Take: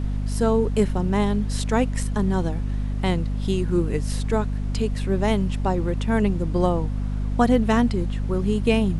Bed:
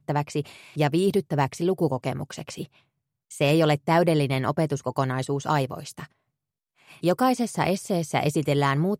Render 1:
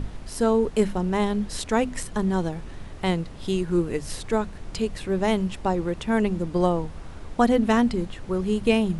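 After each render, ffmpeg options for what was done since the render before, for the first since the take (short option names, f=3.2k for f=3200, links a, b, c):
-af "bandreject=f=50:t=h:w=6,bandreject=f=100:t=h:w=6,bandreject=f=150:t=h:w=6,bandreject=f=200:t=h:w=6,bandreject=f=250:t=h:w=6"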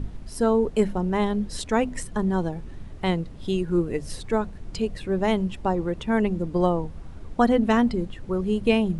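-af "afftdn=nr=8:nf=-39"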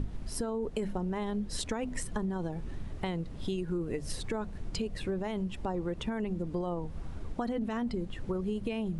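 -af "alimiter=limit=-17.5dB:level=0:latency=1:release=20,acompressor=threshold=-30dB:ratio=6"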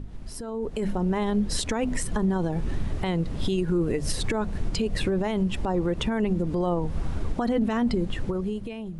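-af "alimiter=level_in=4dB:limit=-24dB:level=0:latency=1:release=127,volume=-4dB,dynaudnorm=f=110:g=13:m=11.5dB"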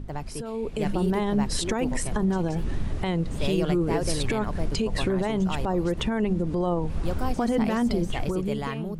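-filter_complex "[1:a]volume=-10dB[a];[0:a][a]amix=inputs=2:normalize=0"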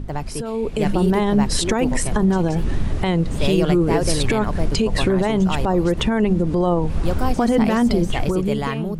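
-af "volume=7dB"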